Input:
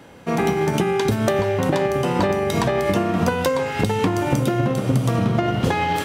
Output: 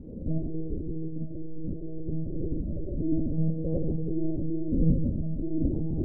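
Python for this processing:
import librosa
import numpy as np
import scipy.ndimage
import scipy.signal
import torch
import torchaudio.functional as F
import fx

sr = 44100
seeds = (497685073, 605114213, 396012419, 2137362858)

y = fx.low_shelf(x, sr, hz=160.0, db=7.0, at=(0.68, 2.89))
y = fx.over_compress(y, sr, threshold_db=-25.0, ratio=-0.5)
y = scipy.ndimage.gaussian_filter1d(y, 25.0, mode='constant')
y = fx.rev_schroeder(y, sr, rt60_s=0.63, comb_ms=31, drr_db=-4.0)
y = fx.lpc_monotone(y, sr, seeds[0], pitch_hz=160.0, order=8)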